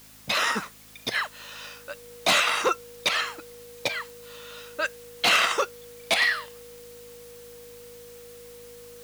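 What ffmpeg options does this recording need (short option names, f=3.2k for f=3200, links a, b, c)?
-af "adeclick=t=4,bandreject=f=52.8:t=h:w=4,bandreject=f=105.6:t=h:w=4,bandreject=f=158.4:t=h:w=4,bandreject=f=211.2:t=h:w=4,bandreject=f=264:t=h:w=4,bandreject=f=480:w=30,afwtdn=0.0028"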